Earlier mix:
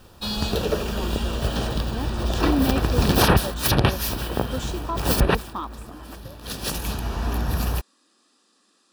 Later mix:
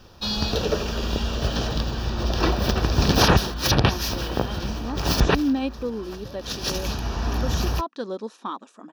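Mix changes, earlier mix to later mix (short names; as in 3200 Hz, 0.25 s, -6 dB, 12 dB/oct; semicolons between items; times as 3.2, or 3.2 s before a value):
speech: entry +2.90 s; master: add resonant high shelf 7000 Hz -6.5 dB, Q 3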